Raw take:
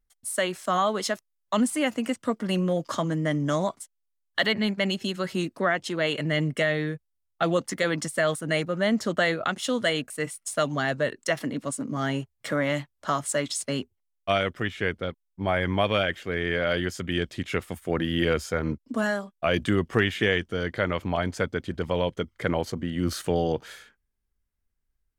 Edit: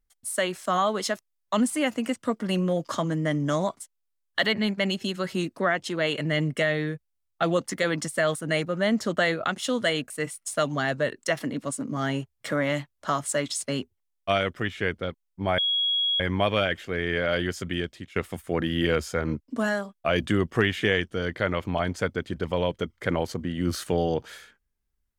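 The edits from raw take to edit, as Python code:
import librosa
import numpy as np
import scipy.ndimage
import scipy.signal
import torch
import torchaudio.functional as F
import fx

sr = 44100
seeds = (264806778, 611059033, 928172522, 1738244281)

y = fx.edit(x, sr, fx.insert_tone(at_s=15.58, length_s=0.62, hz=3320.0, db=-21.5),
    fx.fade_out_to(start_s=17.05, length_s=0.49, floor_db=-17.5), tone=tone)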